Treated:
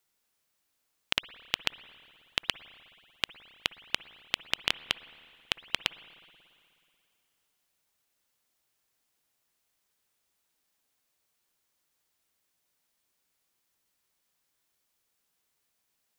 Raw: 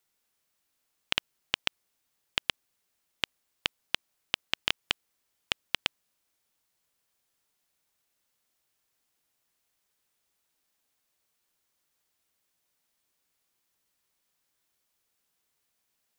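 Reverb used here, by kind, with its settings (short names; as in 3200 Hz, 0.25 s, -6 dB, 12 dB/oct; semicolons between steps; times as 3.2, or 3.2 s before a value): spring tank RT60 2.5 s, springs 54/60 ms, chirp 75 ms, DRR 16 dB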